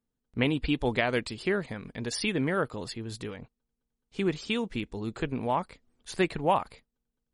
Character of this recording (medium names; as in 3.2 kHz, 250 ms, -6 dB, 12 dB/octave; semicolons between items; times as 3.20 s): noise floor -84 dBFS; spectral tilt -4.0 dB/octave